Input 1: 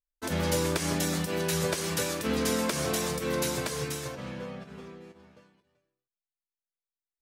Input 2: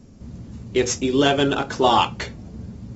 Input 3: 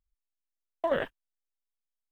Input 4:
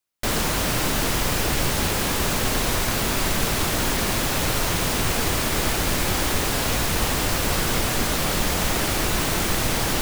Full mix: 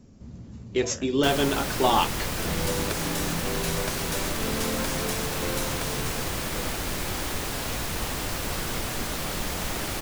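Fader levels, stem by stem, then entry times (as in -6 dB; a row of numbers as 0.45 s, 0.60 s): -2.5 dB, -5.0 dB, -15.0 dB, -7.5 dB; 2.15 s, 0.00 s, 0.00 s, 1.00 s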